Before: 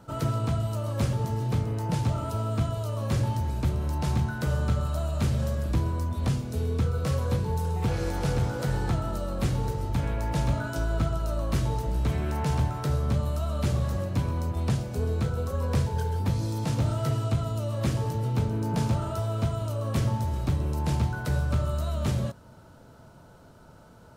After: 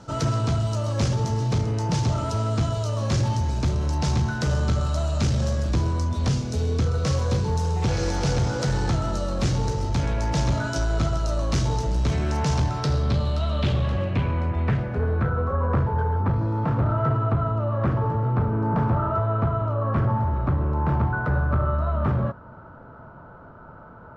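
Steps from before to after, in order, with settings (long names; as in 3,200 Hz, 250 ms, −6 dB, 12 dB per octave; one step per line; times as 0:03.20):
soft clipping −21 dBFS, distortion −17 dB
low-pass filter sweep 6,000 Hz → 1,300 Hz, 0:12.54–0:15.54
level +5.5 dB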